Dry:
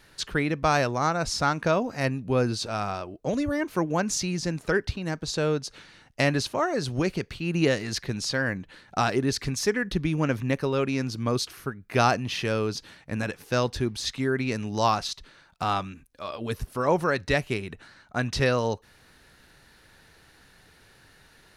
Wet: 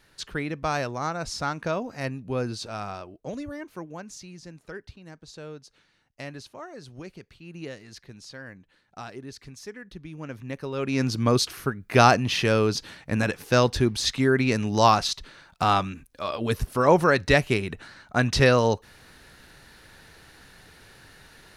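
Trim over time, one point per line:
3.01 s -4.5 dB
4.13 s -15 dB
10.04 s -15 dB
10.75 s -5.5 dB
11.03 s +5 dB

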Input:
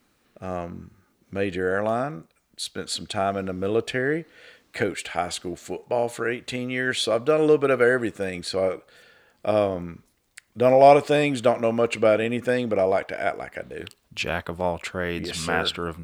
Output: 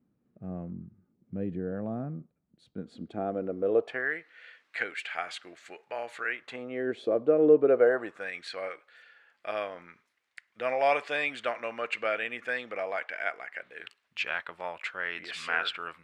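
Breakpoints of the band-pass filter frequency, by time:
band-pass filter, Q 1.5
2.68 s 170 Hz
3.77 s 540 Hz
4.13 s 1.9 kHz
6.33 s 1.9 kHz
6.89 s 370 Hz
7.63 s 370 Hz
8.32 s 1.9 kHz

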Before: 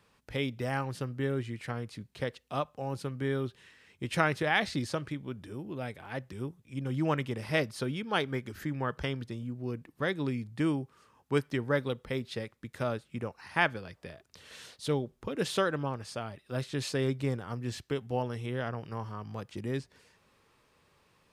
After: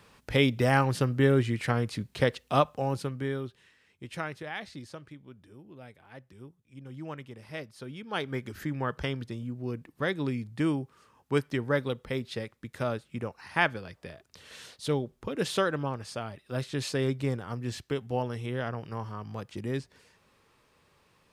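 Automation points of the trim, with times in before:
2.68 s +9 dB
3.44 s -3 dB
4.56 s -10.5 dB
7.74 s -10.5 dB
8.42 s +1.5 dB

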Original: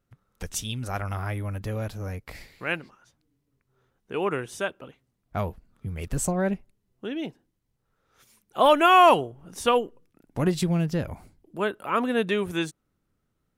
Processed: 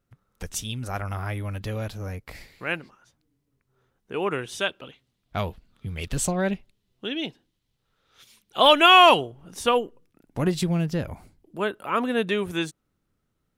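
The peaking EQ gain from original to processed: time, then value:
peaking EQ 3.5 kHz 1.2 oct
1.17 s 0 dB
1.56 s +9.5 dB
2.23 s +0.5 dB
4.15 s +0.5 dB
4.66 s +12.5 dB
8.98 s +12.5 dB
9.66 s +2 dB

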